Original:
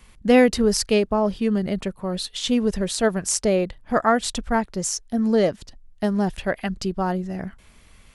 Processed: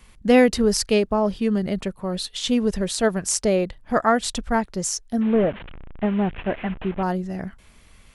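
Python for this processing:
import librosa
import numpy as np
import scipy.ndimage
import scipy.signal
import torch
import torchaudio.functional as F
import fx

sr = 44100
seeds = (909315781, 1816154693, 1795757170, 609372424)

y = fx.delta_mod(x, sr, bps=16000, step_db=-31.0, at=(5.21, 7.03))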